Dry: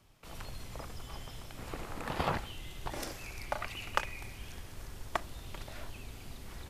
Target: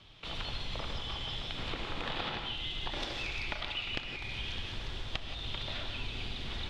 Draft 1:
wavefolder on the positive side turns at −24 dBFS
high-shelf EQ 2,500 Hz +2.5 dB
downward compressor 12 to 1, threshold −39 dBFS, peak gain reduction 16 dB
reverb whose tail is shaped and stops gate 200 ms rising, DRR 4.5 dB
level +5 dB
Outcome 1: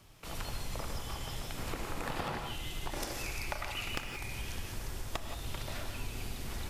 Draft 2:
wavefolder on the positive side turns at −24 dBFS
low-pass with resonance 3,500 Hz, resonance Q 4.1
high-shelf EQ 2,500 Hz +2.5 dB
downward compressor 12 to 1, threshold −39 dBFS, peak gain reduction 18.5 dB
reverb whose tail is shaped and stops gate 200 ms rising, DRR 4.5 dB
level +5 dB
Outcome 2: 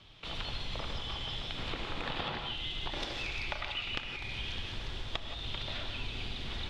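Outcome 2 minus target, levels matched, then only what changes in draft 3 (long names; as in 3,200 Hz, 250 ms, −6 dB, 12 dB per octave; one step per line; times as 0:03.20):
wavefolder on the positive side: distortion −7 dB
change: wavefolder on the positive side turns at −32 dBFS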